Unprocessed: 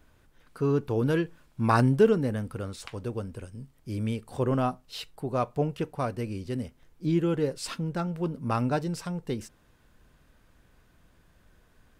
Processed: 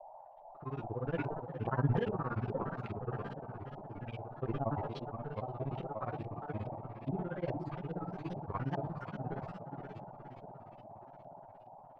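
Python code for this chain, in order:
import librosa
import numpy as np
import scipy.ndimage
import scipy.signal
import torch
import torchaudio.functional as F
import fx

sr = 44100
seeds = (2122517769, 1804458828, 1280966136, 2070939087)

y = fx.law_mismatch(x, sr, coded='A')
y = fx.peak_eq(y, sr, hz=130.0, db=4.5, octaves=0.47)
y = fx.resonator_bank(y, sr, root=47, chord='major', decay_s=0.24)
y = fx.echo_diffused(y, sr, ms=522, feedback_pct=56, wet_db=-6.0)
y = fx.granulator(y, sr, seeds[0], grain_ms=59.0, per_s=17.0, spray_ms=19.0, spread_st=3)
y = fx.dmg_noise_band(y, sr, seeds[1], low_hz=570.0, high_hz=910.0, level_db=-61.0)
y = fx.filter_lfo_lowpass(y, sr, shape='saw_up', hz=2.4, low_hz=660.0, high_hz=3300.0, q=1.6)
y = fx.sustainer(y, sr, db_per_s=36.0)
y = y * 10.0 ** (3.5 / 20.0)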